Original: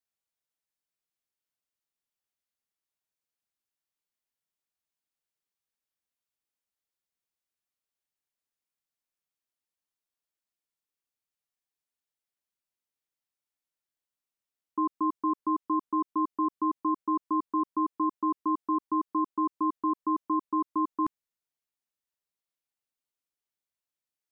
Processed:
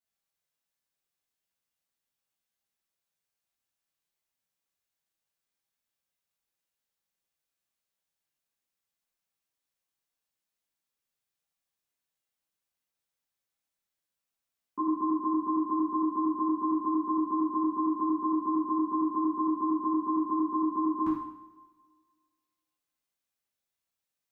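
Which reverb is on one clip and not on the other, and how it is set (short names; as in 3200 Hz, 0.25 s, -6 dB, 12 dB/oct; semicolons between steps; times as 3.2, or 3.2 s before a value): two-slope reverb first 0.71 s, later 1.8 s, from -18 dB, DRR -8 dB; gain -5 dB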